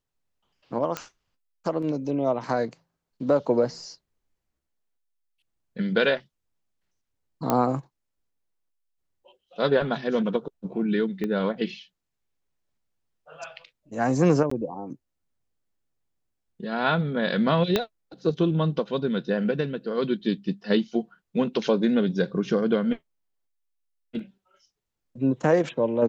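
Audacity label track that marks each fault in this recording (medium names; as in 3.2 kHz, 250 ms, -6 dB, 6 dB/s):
0.970000	0.970000	pop -13 dBFS
7.500000	7.500000	pop -8 dBFS
11.240000	11.240000	pop -18 dBFS
14.500000	14.510000	dropout 14 ms
17.760000	17.760000	pop -8 dBFS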